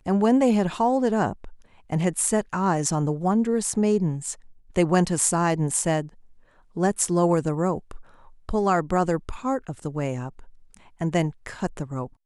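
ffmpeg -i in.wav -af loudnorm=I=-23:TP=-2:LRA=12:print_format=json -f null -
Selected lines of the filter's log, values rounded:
"input_i" : "-24.6",
"input_tp" : "-3.9",
"input_lra" : "6.7",
"input_thresh" : "-35.4",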